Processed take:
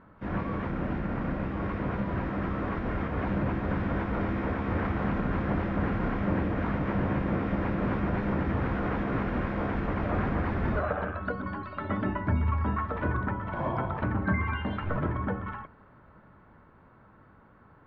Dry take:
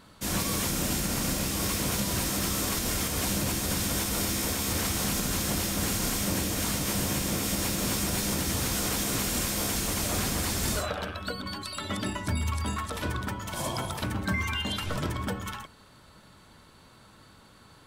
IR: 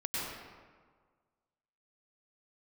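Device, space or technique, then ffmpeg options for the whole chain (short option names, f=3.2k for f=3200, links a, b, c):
action camera in a waterproof case: -af "lowpass=f=1.8k:w=0.5412,lowpass=f=1.8k:w=1.3066,dynaudnorm=f=340:g=17:m=3dB" -ar 16000 -c:a aac -b:a 64k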